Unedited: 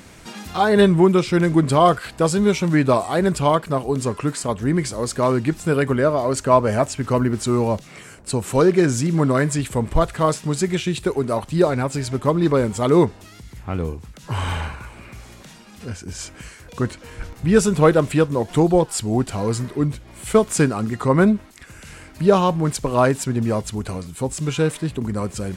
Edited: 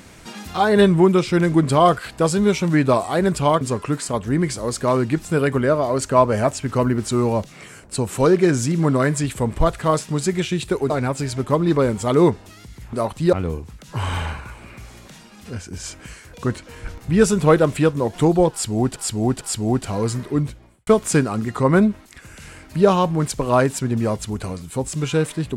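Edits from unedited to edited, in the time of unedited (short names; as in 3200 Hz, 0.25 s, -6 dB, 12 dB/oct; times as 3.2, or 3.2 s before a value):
3.61–3.96 cut
11.25–11.65 move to 13.68
18.86–19.31 loop, 3 plays
19.89–20.32 studio fade out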